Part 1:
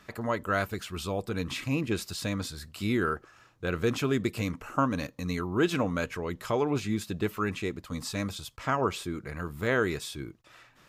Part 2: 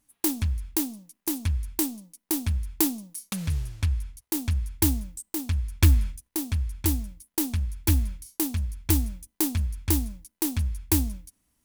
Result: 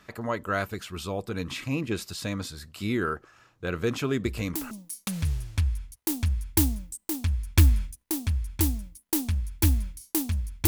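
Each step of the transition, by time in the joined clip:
part 1
4.25 s: add part 2 from 2.50 s 0.46 s -10 dB
4.71 s: go over to part 2 from 2.96 s

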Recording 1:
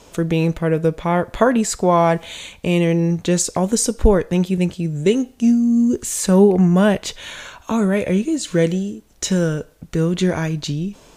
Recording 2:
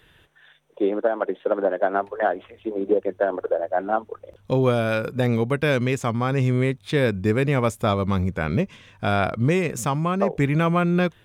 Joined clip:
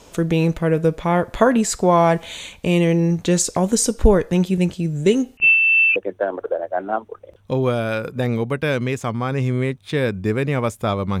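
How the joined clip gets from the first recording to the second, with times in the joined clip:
recording 1
5.37–5.96 s: frequency inversion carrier 2.9 kHz
5.96 s: go over to recording 2 from 2.96 s

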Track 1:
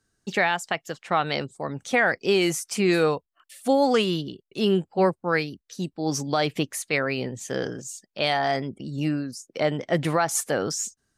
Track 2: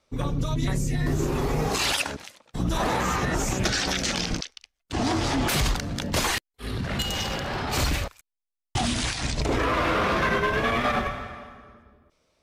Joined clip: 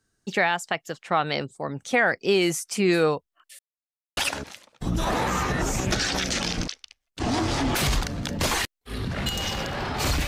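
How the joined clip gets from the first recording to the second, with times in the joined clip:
track 1
3.59–4.17 s: mute
4.17 s: go over to track 2 from 1.90 s

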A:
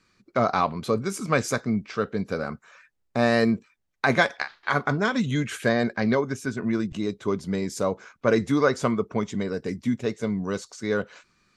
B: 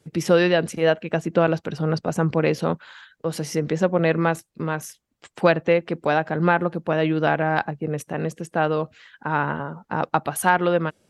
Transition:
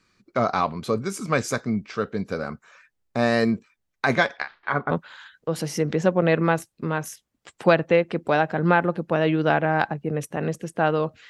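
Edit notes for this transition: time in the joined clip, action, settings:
A
4.15–4.91 s: low-pass 6.7 kHz -> 1.4 kHz
4.91 s: go over to B from 2.68 s

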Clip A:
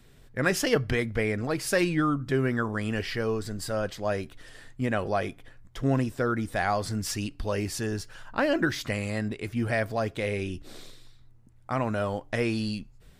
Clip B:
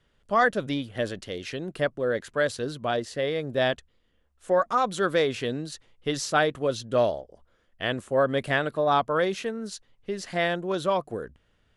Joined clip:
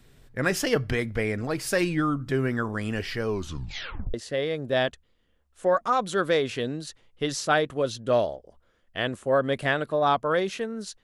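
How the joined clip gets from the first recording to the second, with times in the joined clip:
clip A
3.28 s: tape stop 0.86 s
4.14 s: go over to clip B from 2.99 s

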